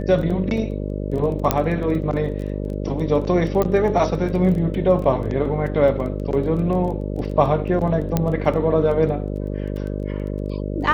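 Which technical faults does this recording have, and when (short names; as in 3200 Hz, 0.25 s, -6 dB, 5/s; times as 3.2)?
buzz 50 Hz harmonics 12 -26 dBFS
crackle 13/s -29 dBFS
1.51 pop -2 dBFS
3.62 pop -8 dBFS
8.17 pop -6 dBFS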